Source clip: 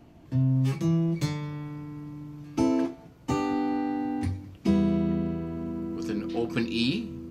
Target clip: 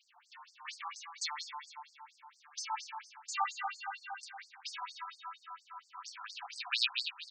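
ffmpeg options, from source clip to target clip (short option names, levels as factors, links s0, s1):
-af "aecho=1:1:153|306|459|612|765:0.531|0.228|0.0982|0.0422|0.0181,afftfilt=real='re*between(b*sr/1024,990*pow(6400/990,0.5+0.5*sin(2*PI*4.3*pts/sr))/1.41,990*pow(6400/990,0.5+0.5*sin(2*PI*4.3*pts/sr))*1.41)':imag='im*between(b*sr/1024,990*pow(6400/990,0.5+0.5*sin(2*PI*4.3*pts/sr))/1.41,990*pow(6400/990,0.5+0.5*sin(2*PI*4.3*pts/sr))*1.41)':win_size=1024:overlap=0.75,volume=1.88"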